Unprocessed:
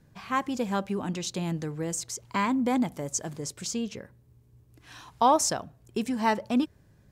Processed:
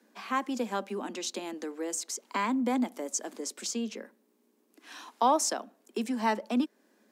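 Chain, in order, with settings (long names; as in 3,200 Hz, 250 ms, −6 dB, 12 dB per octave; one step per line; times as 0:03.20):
in parallel at 0 dB: downward compressor, threshold −36 dBFS, peak gain reduction 18 dB
on the sum: Butterworth high-pass 210 Hz 96 dB per octave
level −4.5 dB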